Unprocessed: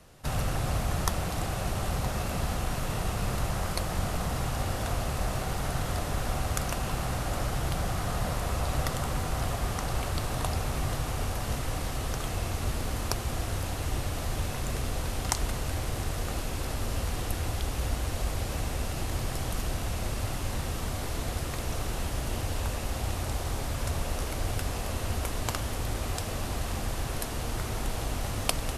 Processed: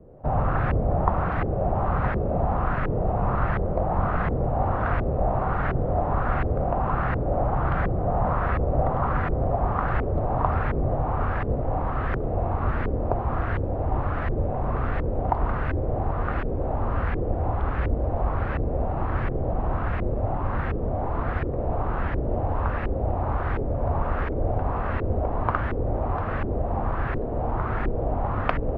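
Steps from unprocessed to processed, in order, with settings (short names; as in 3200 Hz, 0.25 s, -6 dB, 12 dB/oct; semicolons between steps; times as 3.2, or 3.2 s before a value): LFO low-pass saw up 1.4 Hz 400–1900 Hz; LPF 2700 Hz 12 dB/oct; gain +5.5 dB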